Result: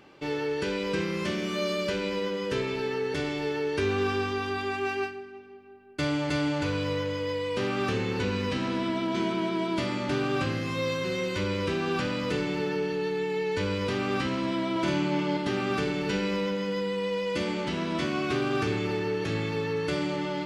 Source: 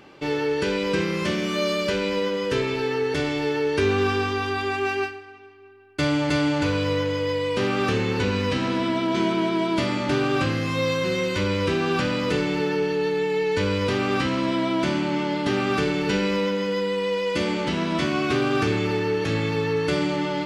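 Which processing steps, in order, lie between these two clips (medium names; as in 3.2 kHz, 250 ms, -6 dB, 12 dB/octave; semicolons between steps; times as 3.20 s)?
14.71–15.37 s: doubling 48 ms -3.5 dB; bucket-brigade echo 178 ms, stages 1024, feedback 77%, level -19.5 dB; trim -5.5 dB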